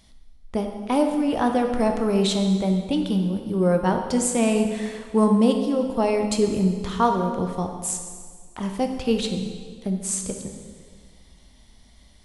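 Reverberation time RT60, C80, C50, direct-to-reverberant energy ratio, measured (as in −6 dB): 1.8 s, 7.0 dB, 5.5 dB, 4.0 dB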